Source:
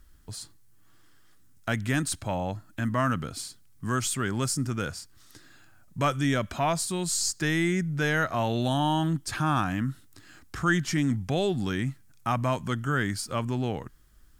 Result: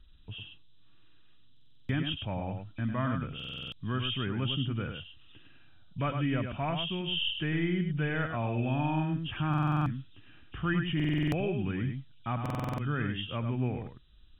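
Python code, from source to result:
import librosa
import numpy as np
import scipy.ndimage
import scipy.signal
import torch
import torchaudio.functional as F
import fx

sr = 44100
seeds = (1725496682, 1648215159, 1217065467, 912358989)

y = fx.freq_compress(x, sr, knee_hz=2300.0, ratio=4.0)
y = fx.low_shelf(y, sr, hz=280.0, db=8.0)
y = y + 10.0 ** (-6.5 / 20.0) * np.pad(y, (int(103 * sr / 1000.0), 0))[:len(y)]
y = fx.buffer_glitch(y, sr, at_s=(1.52, 3.35, 9.49, 10.95, 12.41), block=2048, repeats=7)
y = y * 10.0 ** (-9.0 / 20.0)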